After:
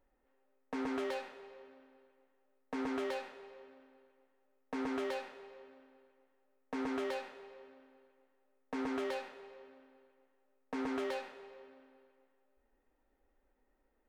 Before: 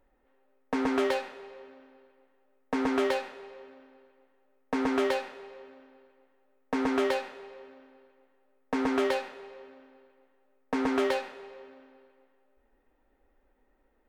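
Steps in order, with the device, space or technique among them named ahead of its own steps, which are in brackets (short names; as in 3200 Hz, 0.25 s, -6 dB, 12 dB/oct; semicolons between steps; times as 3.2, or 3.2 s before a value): clipper into limiter (hard clip -19 dBFS, distortion -25 dB; limiter -23 dBFS, peak gain reduction 4 dB); gain -7 dB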